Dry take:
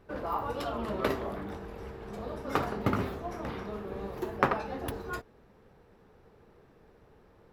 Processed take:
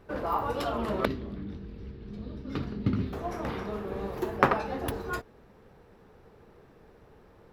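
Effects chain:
0:01.05–0:03.13: drawn EQ curve 250 Hz 0 dB, 750 Hz −21 dB, 4,300 Hz −5 dB, 8,200 Hz −23 dB
level +3.5 dB

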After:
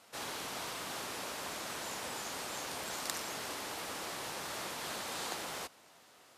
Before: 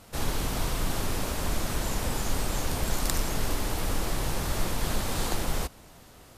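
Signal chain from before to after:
meter weighting curve A
level −6 dB

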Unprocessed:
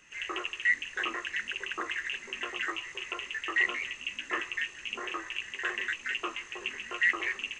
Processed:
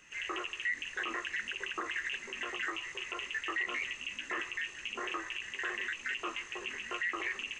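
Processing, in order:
brickwall limiter −26 dBFS, peak gain reduction 11 dB

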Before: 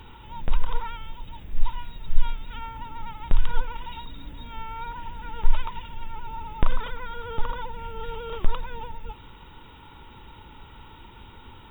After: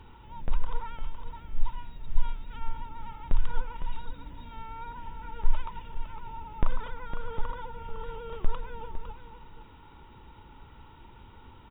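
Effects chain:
high-shelf EQ 3,000 Hz −11 dB
single-tap delay 507 ms −9.5 dB
level −4.5 dB

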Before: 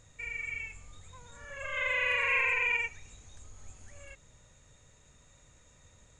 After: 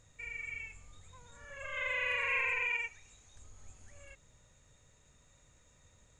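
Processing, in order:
0:02.66–0:03.36: low-shelf EQ 420 Hz −6.5 dB
level −4.5 dB

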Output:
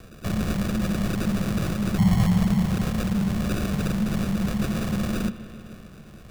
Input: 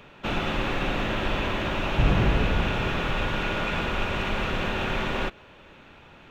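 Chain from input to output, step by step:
spectral envelope exaggerated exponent 2
in parallel at −2 dB: downward compressor, threshold −33 dBFS, peak gain reduction 16 dB
on the sum: decimation without filtering 39×
frequency shifter −230 Hz
bucket-brigade delay 149 ms, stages 4,096, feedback 75%, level −17 dB

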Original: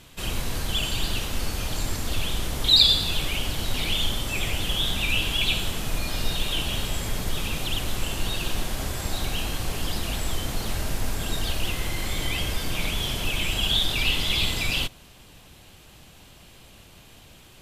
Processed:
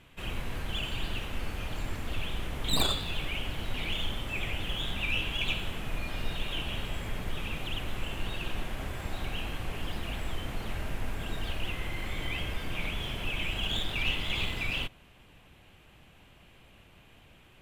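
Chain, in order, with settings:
stylus tracing distortion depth 0.1 ms
high shelf with overshoot 3,500 Hz −9 dB, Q 1.5
level −6.5 dB

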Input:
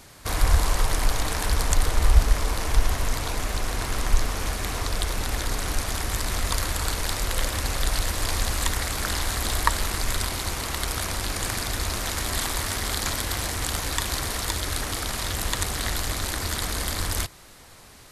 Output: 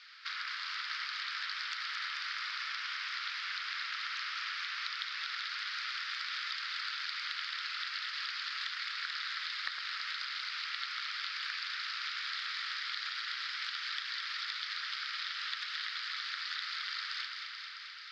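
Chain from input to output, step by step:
Chebyshev band-pass filter 1,300–5,000 Hz, order 4
downward compressor 6 to 1, threshold −37 dBFS, peak gain reduction 16 dB
delay that swaps between a low-pass and a high-pass 109 ms, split 1,700 Hz, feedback 87%, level −4.5 dB

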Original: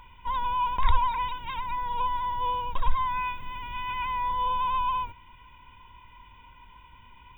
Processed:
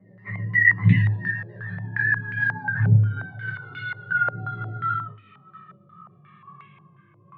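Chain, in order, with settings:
pitch glide at a constant tempo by +11.5 semitones ending unshifted
frequency shifter +100 Hz
rotating-speaker cabinet horn 7 Hz, later 1 Hz, at 0:02.21
flanger swept by the level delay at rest 6.5 ms, full sweep at −25 dBFS
high-frequency loss of the air 180 metres
backwards echo 1,158 ms −20 dB
convolution reverb, pre-delay 3 ms, DRR −5 dB
low-pass on a step sequencer 5.6 Hz 570–2,300 Hz

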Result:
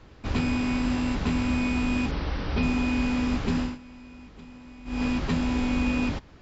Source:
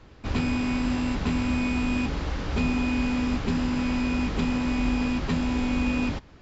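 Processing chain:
0:02.11–0:02.63: Butterworth low-pass 5,800 Hz 96 dB per octave
0:03.59–0:05.04: duck −20 dB, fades 0.19 s

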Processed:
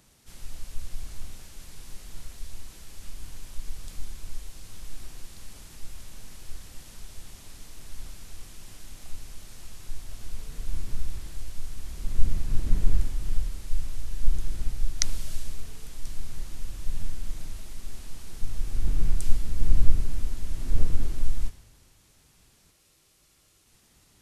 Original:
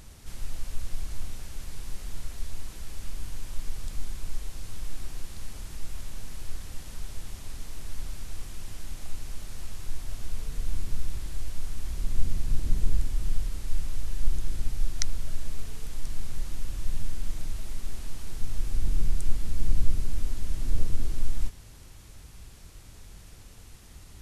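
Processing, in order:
frozen spectrum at 0:22.73, 0.93 s
multiband upward and downward expander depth 70%
level −1 dB

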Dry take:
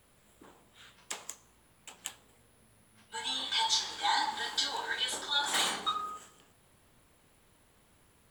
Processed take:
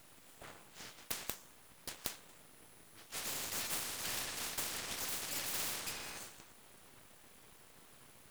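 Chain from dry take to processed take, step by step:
full-wave rectification
every bin compressed towards the loudest bin 4 to 1

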